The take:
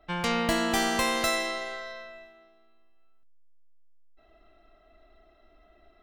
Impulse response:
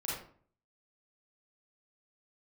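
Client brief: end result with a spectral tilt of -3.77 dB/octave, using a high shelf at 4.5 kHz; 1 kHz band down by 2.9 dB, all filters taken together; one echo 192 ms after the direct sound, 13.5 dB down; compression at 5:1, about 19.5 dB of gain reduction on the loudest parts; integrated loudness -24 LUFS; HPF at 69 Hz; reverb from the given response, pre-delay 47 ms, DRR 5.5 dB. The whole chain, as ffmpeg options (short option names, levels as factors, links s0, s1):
-filter_complex "[0:a]highpass=69,equalizer=f=1000:t=o:g=-3.5,highshelf=f=4500:g=-7,acompressor=threshold=0.00501:ratio=5,aecho=1:1:192:0.211,asplit=2[s0][s1];[1:a]atrim=start_sample=2205,adelay=47[s2];[s1][s2]afir=irnorm=-1:irlink=0,volume=0.376[s3];[s0][s3]amix=inputs=2:normalize=0,volume=11.9"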